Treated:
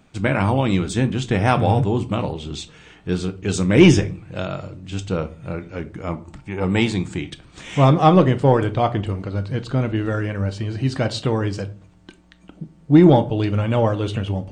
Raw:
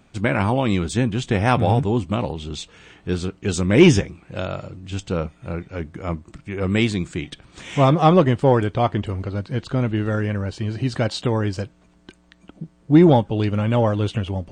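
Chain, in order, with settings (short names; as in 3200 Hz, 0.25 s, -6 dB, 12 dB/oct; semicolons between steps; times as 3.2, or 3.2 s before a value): 6.12–7.17 bell 860 Hz +15 dB 0.22 oct; shoebox room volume 310 m³, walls furnished, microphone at 0.52 m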